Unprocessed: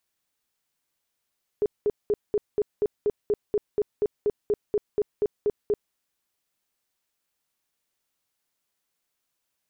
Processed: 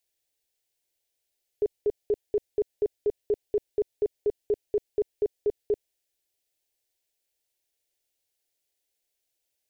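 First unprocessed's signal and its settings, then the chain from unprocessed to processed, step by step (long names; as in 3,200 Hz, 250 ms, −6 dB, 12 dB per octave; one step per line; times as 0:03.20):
tone bursts 416 Hz, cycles 16, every 0.24 s, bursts 18, −19 dBFS
phaser with its sweep stopped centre 480 Hz, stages 4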